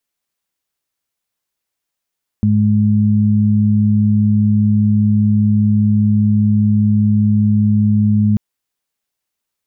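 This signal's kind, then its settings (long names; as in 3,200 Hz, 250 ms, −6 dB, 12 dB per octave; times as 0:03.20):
steady harmonic partials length 5.94 s, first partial 105 Hz, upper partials 1 dB, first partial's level −13 dB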